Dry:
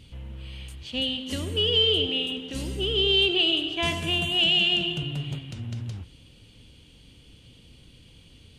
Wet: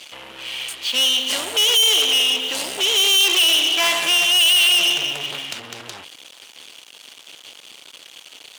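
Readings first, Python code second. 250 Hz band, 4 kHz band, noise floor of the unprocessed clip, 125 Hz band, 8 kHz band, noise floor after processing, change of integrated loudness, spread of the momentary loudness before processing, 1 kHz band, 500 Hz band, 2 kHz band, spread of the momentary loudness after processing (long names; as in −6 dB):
−5.5 dB, +8.0 dB, −53 dBFS, below −15 dB, +23.5 dB, −46 dBFS, +8.5 dB, 20 LU, +9.5 dB, −1.0 dB, +9.0 dB, 17 LU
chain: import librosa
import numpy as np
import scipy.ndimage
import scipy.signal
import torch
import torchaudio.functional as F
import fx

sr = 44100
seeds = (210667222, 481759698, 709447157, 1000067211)

y = fx.leveller(x, sr, passes=5)
y = scipy.signal.sosfilt(scipy.signal.butter(2, 760.0, 'highpass', fs=sr, output='sos'), y)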